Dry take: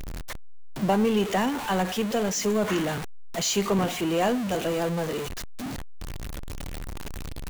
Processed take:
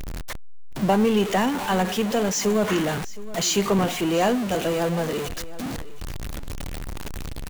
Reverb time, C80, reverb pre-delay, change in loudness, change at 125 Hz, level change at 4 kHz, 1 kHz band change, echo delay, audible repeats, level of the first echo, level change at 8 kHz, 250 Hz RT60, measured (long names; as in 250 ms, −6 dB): no reverb audible, no reverb audible, no reverb audible, +3.0 dB, +3.0 dB, +3.0 dB, +3.0 dB, 718 ms, 1, −17.5 dB, +3.0 dB, no reverb audible